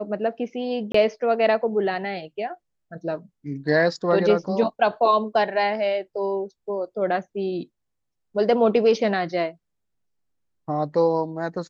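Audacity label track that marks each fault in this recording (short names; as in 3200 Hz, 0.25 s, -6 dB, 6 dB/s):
0.920000	0.940000	gap 24 ms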